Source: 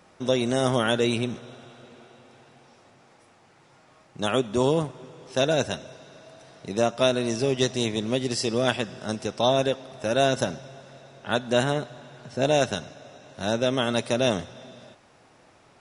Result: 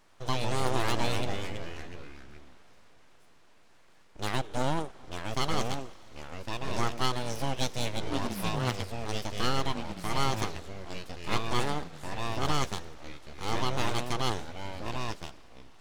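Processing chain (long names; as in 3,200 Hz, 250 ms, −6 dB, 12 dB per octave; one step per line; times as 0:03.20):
full-wave rectification
0:08.09–0:09.04: ring modulation 310 Hz → 70 Hz
delay with pitch and tempo change per echo 93 ms, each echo −3 semitones, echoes 3, each echo −6 dB
level −5 dB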